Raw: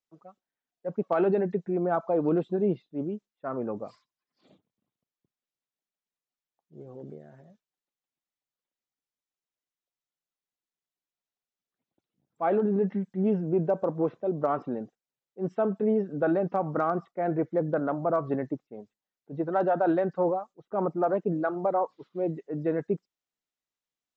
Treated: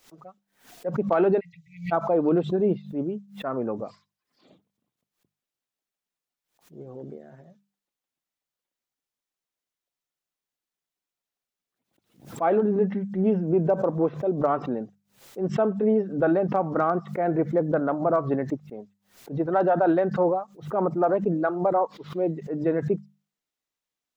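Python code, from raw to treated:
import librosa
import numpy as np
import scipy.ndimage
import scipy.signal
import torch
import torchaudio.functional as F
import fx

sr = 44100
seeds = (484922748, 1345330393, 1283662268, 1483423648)

y = fx.hum_notches(x, sr, base_hz=50, count=4)
y = fx.brickwall_bandstop(y, sr, low_hz=150.0, high_hz=1900.0, at=(1.39, 1.91), fade=0.02)
y = fx.pre_swell(y, sr, db_per_s=140.0)
y = F.gain(torch.from_numpy(y), 3.5).numpy()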